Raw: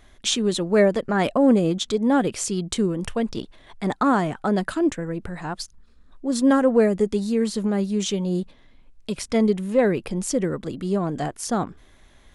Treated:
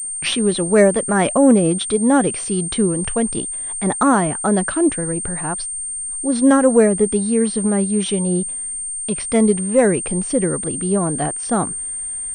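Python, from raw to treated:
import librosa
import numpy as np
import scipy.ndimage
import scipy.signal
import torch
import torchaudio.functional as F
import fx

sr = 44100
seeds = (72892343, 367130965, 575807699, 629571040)

y = fx.tape_start_head(x, sr, length_s=0.33)
y = fx.pwm(y, sr, carrier_hz=8700.0)
y = y * 10.0 ** (4.5 / 20.0)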